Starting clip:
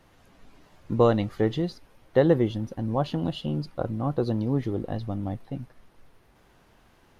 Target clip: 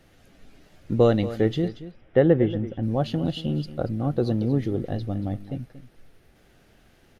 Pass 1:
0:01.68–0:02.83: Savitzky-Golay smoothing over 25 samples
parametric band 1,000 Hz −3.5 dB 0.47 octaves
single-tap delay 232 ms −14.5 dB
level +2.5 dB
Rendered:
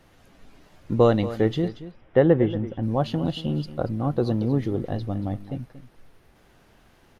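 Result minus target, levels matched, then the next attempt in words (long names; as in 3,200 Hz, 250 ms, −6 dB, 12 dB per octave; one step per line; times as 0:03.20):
1,000 Hz band +3.0 dB
0:01.68–0:02.83: Savitzky-Golay smoothing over 25 samples
parametric band 1,000 Hz −12.5 dB 0.47 octaves
single-tap delay 232 ms −14.5 dB
level +2.5 dB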